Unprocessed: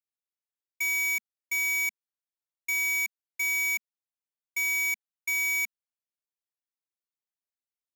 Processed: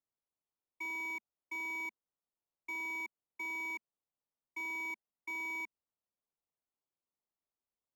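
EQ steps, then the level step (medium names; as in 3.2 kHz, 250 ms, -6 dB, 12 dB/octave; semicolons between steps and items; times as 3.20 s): Savitzky-Golay filter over 65 samples; +4.5 dB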